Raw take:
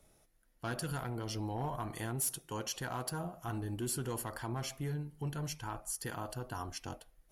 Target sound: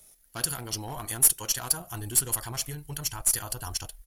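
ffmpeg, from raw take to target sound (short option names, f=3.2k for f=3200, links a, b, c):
-af "crystalizer=i=6:c=0,atempo=1.8,asubboost=boost=7:cutoff=81,aeval=exprs='0.473*(cos(1*acos(clip(val(0)/0.473,-1,1)))-cos(1*PI/2))+0.0596*(cos(2*acos(clip(val(0)/0.473,-1,1)))-cos(2*PI/2))+0.0211*(cos(8*acos(clip(val(0)/0.473,-1,1)))-cos(8*PI/2))':c=same"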